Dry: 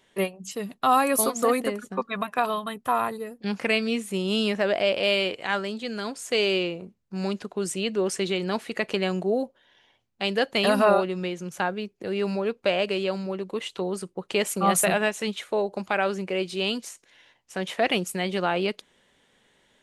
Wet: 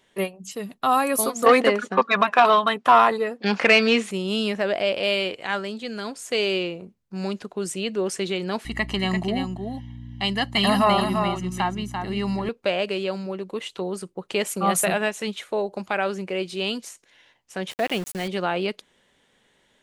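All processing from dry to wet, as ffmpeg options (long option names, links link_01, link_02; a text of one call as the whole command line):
ffmpeg -i in.wav -filter_complex "[0:a]asettb=1/sr,asplit=3[link_01][link_02][link_03];[link_01]atrim=end=1.464[link_04];[link_02]atrim=start=1.46:end=4.11,asetpts=PTS-STARTPTS,afade=type=in:duration=0.004:curve=qsin,afade=type=out:start_time=2.646:duration=0.004:curve=qsin,acontrast=71,asplit=2[link_05][link_06];[link_06]highpass=frequency=720:poles=1,volume=13dB,asoftclip=type=tanh:threshold=-5dB[link_07];[link_05][link_07]amix=inputs=2:normalize=0,lowpass=frequency=3600:poles=1,volume=-6dB,highpass=150,lowpass=6400[link_08];[link_03]atrim=start=4.106[link_09];[link_04][link_08]acrossfade=duration=0.004:curve1=hsin:curve2=qsin[link_10];[link_10][link_09]acrossfade=duration=0.004:curve1=qsin:curve2=hsin,asettb=1/sr,asplit=3[link_11][link_12][link_13];[link_11]atrim=end=8.654[link_14];[link_12]atrim=start=8.65:end=12.49,asetpts=PTS-STARTPTS,afade=type=in:duration=0.004:curve=qsin,afade=type=out:start_time=3.836:duration=0.004:curve=qsin,aecho=1:1:1:0.86,atrim=end_sample=169344,aeval=exprs='val(0)+0.0178*(sin(2*PI*60*n/s)+sin(2*PI*2*60*n/s)/2+sin(2*PI*3*60*n/s)/3+sin(2*PI*4*60*n/s)/4+sin(2*PI*5*60*n/s)/5)':channel_layout=same,aecho=1:1:342:0.501,atrim=end_sample=169344[link_15];[link_13]atrim=start=12.486[link_16];[link_14][link_15]acrossfade=duration=0.004:curve1=hsin:curve2=qsin[link_17];[link_17][link_16]acrossfade=duration=0.004:curve1=qsin:curve2=hsin,asettb=1/sr,asplit=3[link_18][link_19][link_20];[link_18]atrim=end=17.714[link_21];[link_19]atrim=start=17.71:end=18.28,asetpts=PTS-STARTPTS,afade=type=in:duration=0.004:curve=qsin,afade=type=out:start_time=0.566:duration=0.004:curve=qsin,equalizer=frequency=2000:width=0.32:gain=-2.5,aeval=exprs='val(0)*gte(abs(val(0)),0.0211)':channel_layout=same[link_22];[link_20]atrim=start=18.276[link_23];[link_21][link_22]acrossfade=duration=0.004:curve1=hsin:curve2=qsin[link_24];[link_24][link_23]acrossfade=duration=0.004:curve1=qsin:curve2=hsin" out.wav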